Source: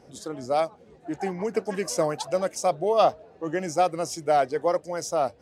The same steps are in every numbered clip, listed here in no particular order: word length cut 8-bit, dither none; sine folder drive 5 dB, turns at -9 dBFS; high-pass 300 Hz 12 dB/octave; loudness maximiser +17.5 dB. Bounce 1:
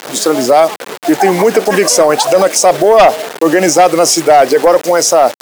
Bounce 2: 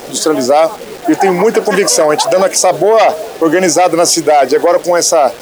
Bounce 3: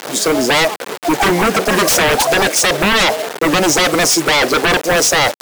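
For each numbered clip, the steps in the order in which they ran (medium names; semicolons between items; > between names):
word length cut > high-pass > sine folder > loudness maximiser; sine folder > high-pass > word length cut > loudness maximiser; word length cut > loudness maximiser > high-pass > sine folder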